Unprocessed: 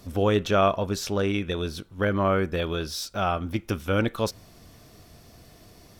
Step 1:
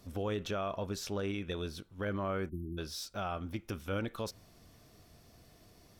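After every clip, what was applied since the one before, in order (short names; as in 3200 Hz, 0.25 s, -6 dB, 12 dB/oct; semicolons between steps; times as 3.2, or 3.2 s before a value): spectral delete 2.49–2.78, 400–9300 Hz; limiter -17.5 dBFS, peak gain reduction 8 dB; gain -9 dB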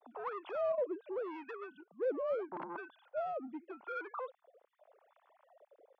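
sine-wave speech; soft clip -37 dBFS, distortion -10 dB; wah 0.81 Hz 500–1100 Hz, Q 2.5; gain +9.5 dB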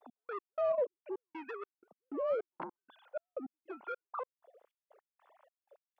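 step gate "x..x..xx" 156 bpm -60 dB; gain +2.5 dB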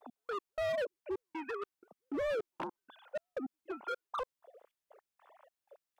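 hard clip -36 dBFS, distortion -7 dB; gain +4 dB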